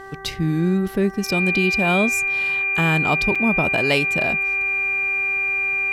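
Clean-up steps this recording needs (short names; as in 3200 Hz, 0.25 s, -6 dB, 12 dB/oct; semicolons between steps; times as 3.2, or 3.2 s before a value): de-hum 388.9 Hz, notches 5; notch 2400 Hz, Q 30; interpolate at 3.35, 5.5 ms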